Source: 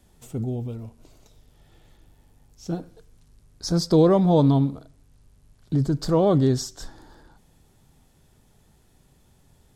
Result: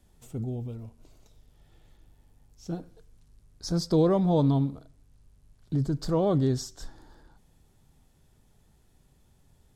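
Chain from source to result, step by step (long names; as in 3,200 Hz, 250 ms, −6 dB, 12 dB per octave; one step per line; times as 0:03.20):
low-shelf EQ 89 Hz +5 dB
level −6 dB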